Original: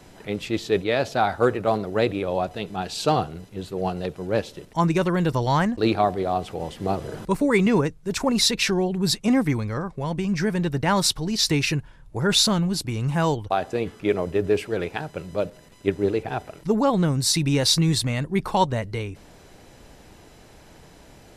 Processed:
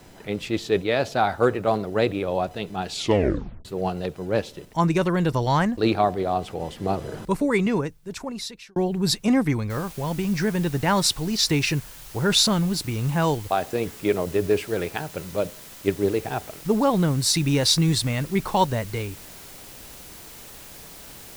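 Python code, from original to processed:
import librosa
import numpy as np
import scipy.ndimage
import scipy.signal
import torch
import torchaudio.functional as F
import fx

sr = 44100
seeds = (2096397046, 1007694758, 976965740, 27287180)

y = fx.noise_floor_step(x, sr, seeds[0], at_s=9.7, before_db=-64, after_db=-44, tilt_db=0.0)
y = fx.edit(y, sr, fx.tape_stop(start_s=2.91, length_s=0.74),
    fx.fade_out_span(start_s=7.2, length_s=1.56), tone=tone)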